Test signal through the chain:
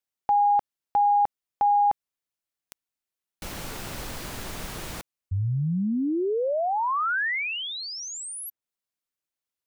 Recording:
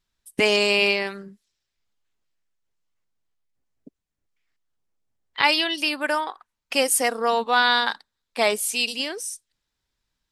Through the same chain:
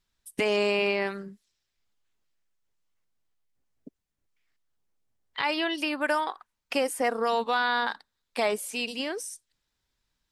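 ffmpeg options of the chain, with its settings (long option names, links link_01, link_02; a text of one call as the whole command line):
ffmpeg -i in.wav -filter_complex "[0:a]acrossover=split=2100[link_01][link_02];[link_01]alimiter=limit=-17dB:level=0:latency=1:release=123[link_03];[link_02]acompressor=threshold=-36dB:ratio=6[link_04];[link_03][link_04]amix=inputs=2:normalize=0" out.wav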